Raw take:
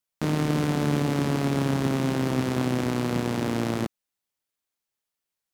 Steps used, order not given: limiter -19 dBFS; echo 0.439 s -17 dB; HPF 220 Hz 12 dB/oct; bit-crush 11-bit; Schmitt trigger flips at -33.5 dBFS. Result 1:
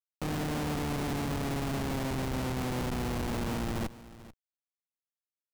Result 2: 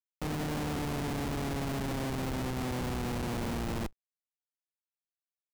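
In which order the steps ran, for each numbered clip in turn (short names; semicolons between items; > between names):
HPF > limiter > Schmitt trigger > echo > bit-crush; echo > limiter > HPF > Schmitt trigger > bit-crush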